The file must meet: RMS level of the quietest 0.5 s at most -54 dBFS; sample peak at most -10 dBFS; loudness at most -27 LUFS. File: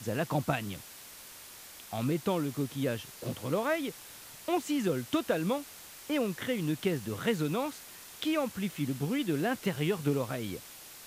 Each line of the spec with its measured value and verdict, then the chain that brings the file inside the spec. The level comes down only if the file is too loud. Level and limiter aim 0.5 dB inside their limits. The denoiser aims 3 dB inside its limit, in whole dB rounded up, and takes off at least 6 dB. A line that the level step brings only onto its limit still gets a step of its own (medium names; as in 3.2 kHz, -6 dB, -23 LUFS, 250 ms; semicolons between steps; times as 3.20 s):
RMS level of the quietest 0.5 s -49 dBFS: fail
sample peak -14.0 dBFS: pass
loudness -32.5 LUFS: pass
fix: noise reduction 8 dB, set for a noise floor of -49 dBFS